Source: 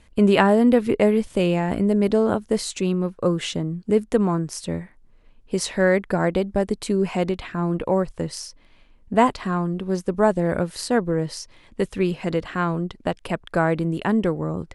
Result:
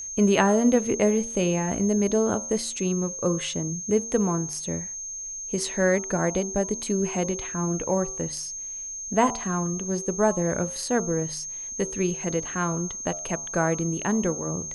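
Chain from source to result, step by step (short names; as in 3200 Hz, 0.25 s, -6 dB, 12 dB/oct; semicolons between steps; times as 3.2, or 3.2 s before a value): whine 6400 Hz -29 dBFS; de-hum 76.48 Hz, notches 18; gain -3.5 dB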